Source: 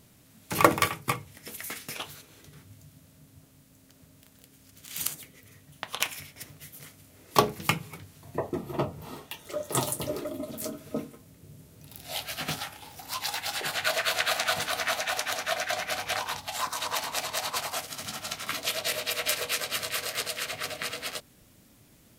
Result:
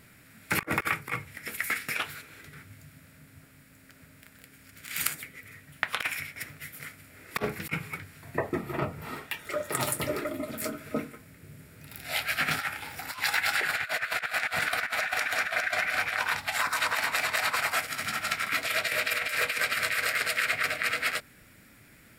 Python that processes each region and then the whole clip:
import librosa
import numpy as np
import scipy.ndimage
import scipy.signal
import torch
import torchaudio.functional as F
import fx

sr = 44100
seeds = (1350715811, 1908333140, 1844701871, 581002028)

y = fx.chain(x, sr, fx.over_compress(threshold_db=-38.0, ratio=-0.5),
    fx.highpass(hz=41.0, slope=12), at=(12.54, 13.21))
y = fx.band_shelf(y, sr, hz=1800.0, db=11.0, octaves=1.1)
y = fx.notch(y, sr, hz=6200.0, q=7.6)
y = fx.over_compress(y, sr, threshold_db=-26.0, ratio=-0.5)
y = F.gain(torch.from_numpy(y), -1.5).numpy()